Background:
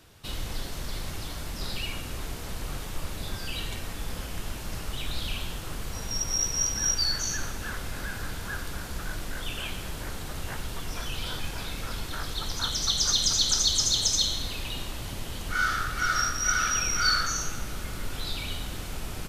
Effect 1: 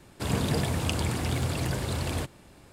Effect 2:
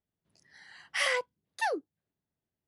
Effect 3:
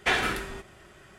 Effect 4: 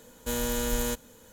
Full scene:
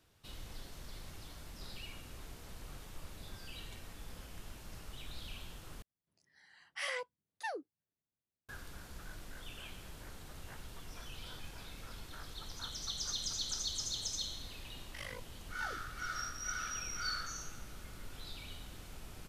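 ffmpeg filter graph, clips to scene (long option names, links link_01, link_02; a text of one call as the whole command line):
ffmpeg -i bed.wav -i cue0.wav -i cue1.wav -filter_complex "[2:a]asplit=2[link_01][link_02];[0:a]volume=-14.5dB[link_03];[link_02]tremolo=f=50:d=1[link_04];[link_03]asplit=2[link_05][link_06];[link_05]atrim=end=5.824[link_07];[link_01]atrim=end=2.67,asetpts=PTS-STARTPTS,volume=-10dB[link_08];[link_06]atrim=start=8.486[link_09];[link_04]atrim=end=2.67,asetpts=PTS-STARTPTS,volume=-14.5dB,afade=type=in:duration=0.004:curve=hsin,afade=type=out:start_time=2.666:duration=0.004:curve=hsin,adelay=13990[link_10];[link_07][link_08]acrossfade=duration=0.004:curve1=hsin:curve2=hsin[link_11];[link_11][link_09]acrossfade=duration=0.004:curve1=hsin:curve2=hsin[link_12];[link_12][link_10]amix=inputs=2:normalize=0" out.wav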